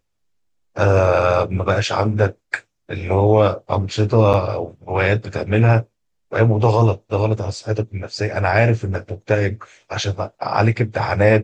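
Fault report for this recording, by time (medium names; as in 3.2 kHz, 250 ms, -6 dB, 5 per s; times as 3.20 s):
4.33–4.34 s: dropout 7.4 ms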